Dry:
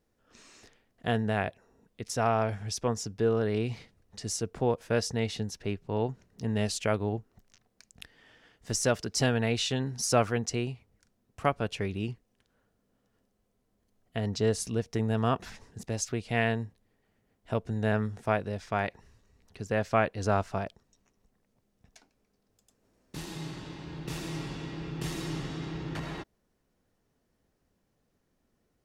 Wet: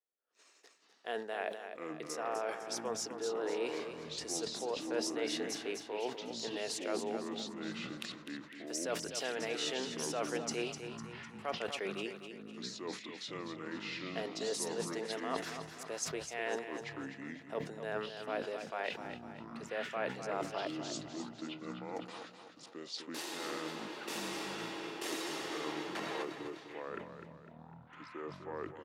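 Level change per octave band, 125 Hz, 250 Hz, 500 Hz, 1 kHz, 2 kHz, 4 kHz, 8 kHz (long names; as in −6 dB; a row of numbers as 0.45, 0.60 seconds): −19.5, −8.0, −6.5, −7.0, −5.0, −2.0, −5.0 decibels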